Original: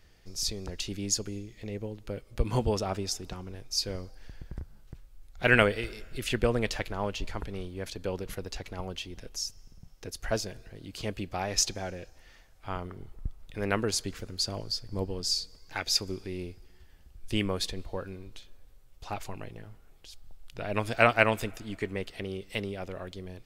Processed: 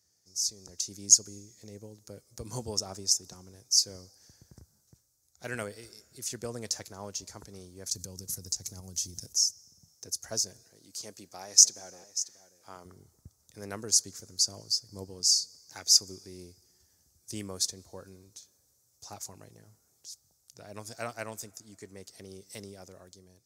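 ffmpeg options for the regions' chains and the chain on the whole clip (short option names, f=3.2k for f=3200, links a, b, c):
-filter_complex "[0:a]asettb=1/sr,asplit=3[a][b][c];[a]atrim=end=7.914[d];[b]atrim=start=7.91:end=9.33,asetpts=PTS-STARTPTS,afade=t=in:d=0.004:c=qsin,afade=t=out:st=1.416:d=0.004:c=qsin,bass=f=250:g=13,treble=f=4k:g=13,acompressor=threshold=-29dB:ratio=12:attack=3.2:release=140:knee=1:detection=peak[e];[c]atrim=start=9.326[f];[d][e]acrossfade=d=0.004:c1=hsin:c2=qsin[g];[g][f]acrossfade=d=0.004:c1=qsin:c2=hsin,asettb=1/sr,asplit=3[h][i][j];[h]atrim=end=10.624[k];[i]atrim=start=10.62:end=12.85,asetpts=PTS-STARTPTS,afade=t=in:d=0.004:c=qsin,afade=t=out:st=2.226:d=0.004:c=qsin,highpass=f=330:p=1,aecho=1:1:588:0.178,atrim=end_sample=98343[l];[j]atrim=start=12.846[m];[k][l]acrossfade=d=0.004:c1=hsin:c2=qsin[n];[n][m]acrossfade=d=0.004:c1=qsin:c2=hsin,dynaudnorm=f=210:g=7:m=7.5dB,highpass=f=79:w=0.5412,highpass=f=79:w=1.3066,highshelf=f=4.2k:t=q:w=3:g=13.5,volume=-17dB"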